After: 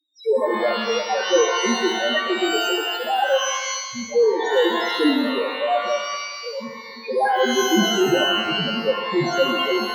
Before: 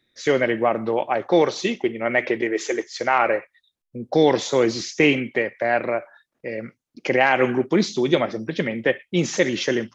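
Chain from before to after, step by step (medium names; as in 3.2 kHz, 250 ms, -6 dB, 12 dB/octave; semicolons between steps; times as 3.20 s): loudest bins only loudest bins 1; pitch-shifted reverb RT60 1.3 s, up +12 st, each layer -2 dB, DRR 5 dB; trim +7 dB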